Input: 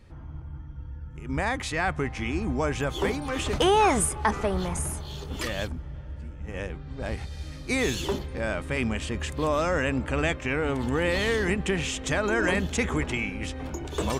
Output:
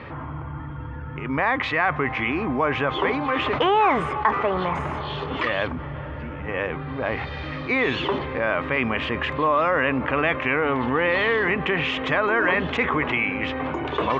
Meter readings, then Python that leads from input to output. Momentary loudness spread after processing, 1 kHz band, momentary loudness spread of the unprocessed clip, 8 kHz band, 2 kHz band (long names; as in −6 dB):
13 LU, +7.0 dB, 14 LU, below −20 dB, +7.0 dB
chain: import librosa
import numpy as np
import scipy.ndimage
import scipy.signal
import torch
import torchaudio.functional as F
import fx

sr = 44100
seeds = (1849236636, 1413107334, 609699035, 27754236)

y = fx.cabinet(x, sr, low_hz=170.0, low_slope=12, high_hz=3000.0, hz=(200.0, 350.0, 1100.0, 2000.0), db=(-9, -4, 8, 3))
y = fx.env_flatten(y, sr, amount_pct=50)